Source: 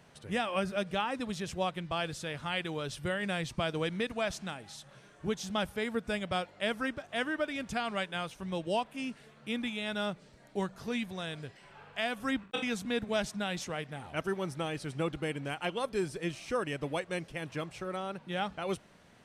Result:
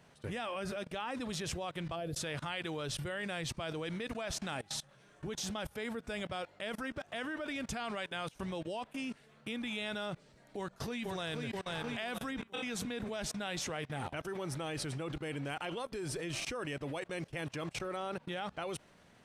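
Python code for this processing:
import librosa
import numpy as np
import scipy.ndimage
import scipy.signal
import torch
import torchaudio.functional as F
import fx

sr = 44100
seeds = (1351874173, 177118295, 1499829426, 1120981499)

y = fx.spec_box(x, sr, start_s=1.96, length_s=0.21, low_hz=740.0, high_hz=9800.0, gain_db=-14)
y = fx.echo_throw(y, sr, start_s=10.57, length_s=0.91, ms=480, feedback_pct=60, wet_db=-9.5)
y = fx.dynamic_eq(y, sr, hz=190.0, q=4.0, threshold_db=-52.0, ratio=4.0, max_db=-6)
y = fx.level_steps(y, sr, step_db=24)
y = y * 10.0 ** (9.5 / 20.0)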